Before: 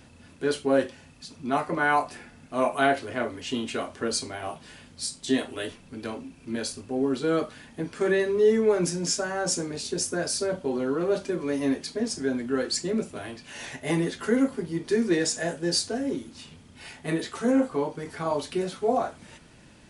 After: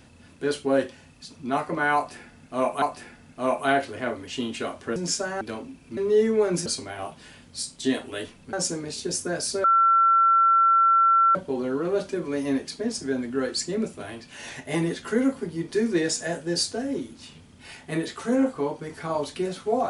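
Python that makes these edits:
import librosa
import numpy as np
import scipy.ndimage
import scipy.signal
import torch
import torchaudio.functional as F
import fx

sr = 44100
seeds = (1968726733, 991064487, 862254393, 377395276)

y = fx.edit(x, sr, fx.repeat(start_s=1.96, length_s=0.86, count=2),
    fx.swap(start_s=4.1, length_s=1.87, other_s=8.95, other_length_s=0.45),
    fx.cut(start_s=6.53, length_s=1.73),
    fx.insert_tone(at_s=10.51, length_s=1.71, hz=1350.0, db=-15.0), tone=tone)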